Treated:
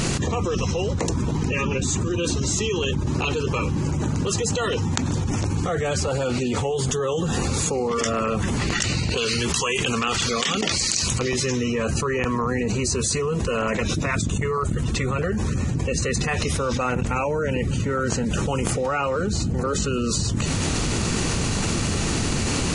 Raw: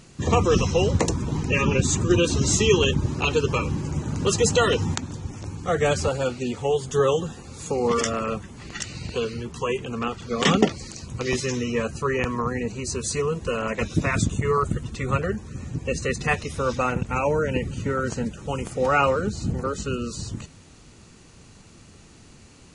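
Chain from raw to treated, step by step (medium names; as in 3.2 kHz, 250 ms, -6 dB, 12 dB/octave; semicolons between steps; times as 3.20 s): 9.17–11.19 s: tilt shelf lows -8 dB, about 1.4 kHz; level flattener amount 100%; trim -9 dB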